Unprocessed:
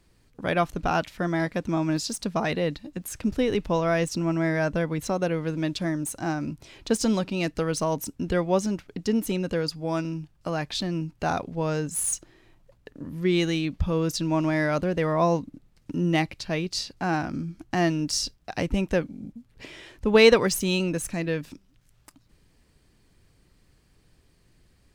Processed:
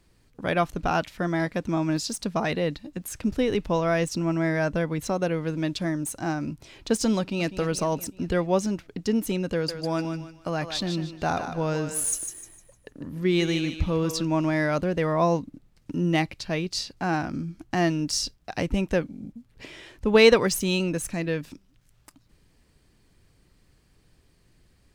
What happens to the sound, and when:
0:07.19–0:07.59: delay throw 200 ms, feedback 60%, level −12 dB
0:09.53–0:14.25: feedback echo with a high-pass in the loop 152 ms, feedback 34%, high-pass 480 Hz, level −7 dB

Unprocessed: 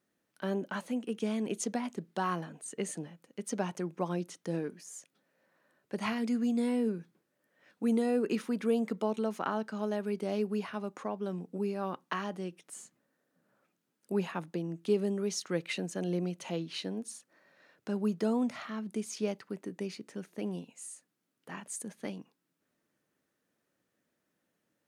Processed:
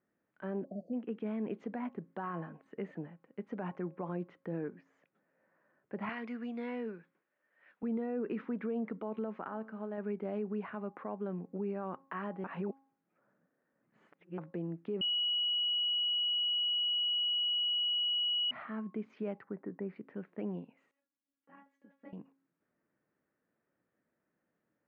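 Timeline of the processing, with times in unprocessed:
0:00.64–0:00.94: time-frequency box erased 740–4,300 Hz
0:06.09–0:07.83: spectral tilt +4.5 dB per octave
0:09.48–0:09.98: tuned comb filter 110 Hz, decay 1.5 s, mix 50%
0:12.44–0:14.38: reverse
0:15.01–0:18.51: beep over 2,920 Hz −14.5 dBFS
0:19.44–0:19.96: flat-topped bell 4,100 Hz −13 dB
0:20.91–0:22.13: tuned comb filter 280 Hz, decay 0.17 s, mix 100%
whole clip: low-pass filter 2,100 Hz 24 dB per octave; hum removal 271.6 Hz, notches 4; brickwall limiter −27.5 dBFS; level −1.5 dB

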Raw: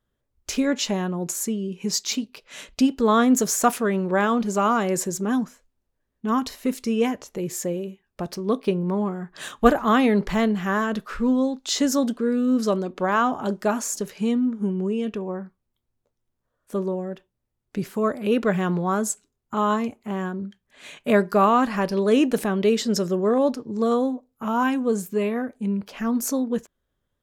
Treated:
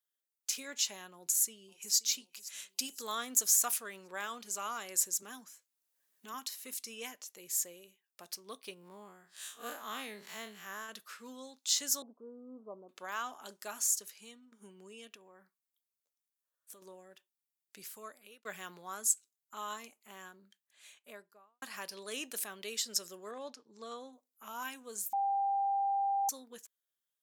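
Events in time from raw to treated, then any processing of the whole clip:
0:01.15–0:01.95: delay throw 530 ms, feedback 40%, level −16 dB
0:02.69–0:03.15: high-shelf EQ 6,200 Hz +8.5 dB
0:05.22–0:06.34: multiband upward and downward compressor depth 70%
0:08.74–0:10.89: spectrum smeared in time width 90 ms
0:12.02–0:12.89: Butterworth low-pass 1,000 Hz 48 dB per octave
0:13.93–0:14.52: fade out, to −11.5 dB
0:15.07–0:16.82: downward compressor, threshold −30 dBFS
0:17.86–0:18.45: fade out
0:20.46–0:21.62: fade out and dull
0:23.31–0:24.13: high-frequency loss of the air 88 metres
0:25.13–0:26.29: beep over 793 Hz −8 dBFS
whole clip: high-pass filter 130 Hz; first difference; level −1.5 dB

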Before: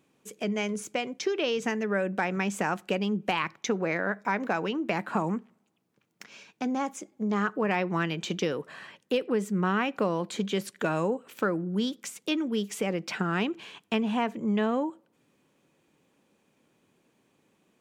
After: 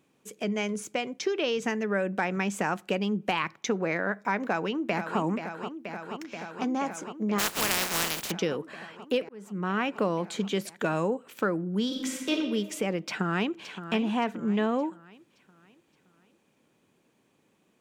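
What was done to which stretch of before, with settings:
0:04.44–0:05.20: delay throw 480 ms, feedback 85%, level −8.5 dB
0:07.38–0:08.30: compressing power law on the bin magnitudes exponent 0.2
0:09.29–0:09.87: fade in
0:11.85–0:12.30: thrown reverb, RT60 1.5 s, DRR −3 dB
0:13.02–0:13.69: delay throw 570 ms, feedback 45%, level −11 dB

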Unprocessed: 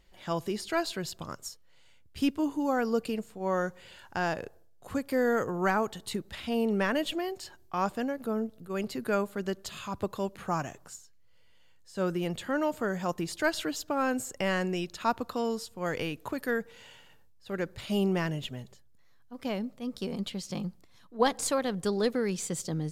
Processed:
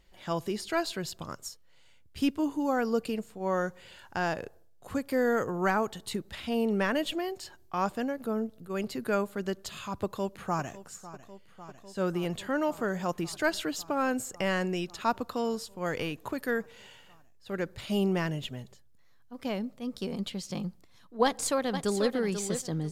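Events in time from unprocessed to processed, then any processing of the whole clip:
0:10.03–0:10.84: delay throw 550 ms, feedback 85%, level −16 dB
0:21.24–0:22.09: delay throw 490 ms, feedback 20%, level −8.5 dB

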